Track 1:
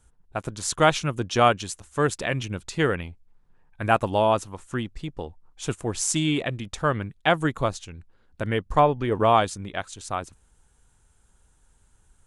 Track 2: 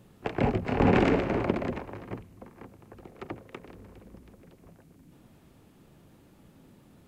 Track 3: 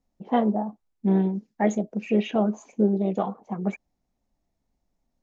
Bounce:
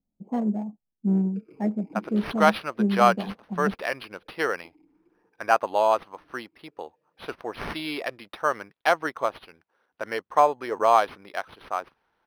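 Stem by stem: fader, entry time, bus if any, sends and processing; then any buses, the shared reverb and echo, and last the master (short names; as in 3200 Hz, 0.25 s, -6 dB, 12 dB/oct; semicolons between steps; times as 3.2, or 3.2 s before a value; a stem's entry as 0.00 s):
+2.5 dB, 1.60 s, no send, median filter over 3 samples; HPF 580 Hz 12 dB/oct; high shelf 4700 Hz -10.5 dB
-6.0 dB, 1.10 s, no send, bell 1100 Hz -11 dB 0.63 oct; comb 6.4 ms, depth 94%; vowel sweep e-u 0.67 Hz; auto duck -11 dB, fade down 1.95 s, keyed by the third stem
-10.0 dB, 0.00 s, no send, Wiener smoothing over 25 samples; bell 190 Hz +9.5 dB 1.3 oct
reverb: off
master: decimation joined by straight lines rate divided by 6×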